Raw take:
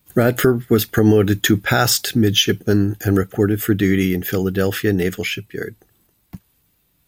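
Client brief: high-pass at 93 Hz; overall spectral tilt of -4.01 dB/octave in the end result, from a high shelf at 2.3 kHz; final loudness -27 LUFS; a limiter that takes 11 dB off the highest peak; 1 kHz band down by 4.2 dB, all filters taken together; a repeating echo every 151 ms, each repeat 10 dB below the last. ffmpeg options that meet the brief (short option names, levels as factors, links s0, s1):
-af "highpass=93,equalizer=f=1000:t=o:g=-9,highshelf=f=2300:g=6,alimiter=limit=0.316:level=0:latency=1,aecho=1:1:151|302|453|604:0.316|0.101|0.0324|0.0104,volume=0.473"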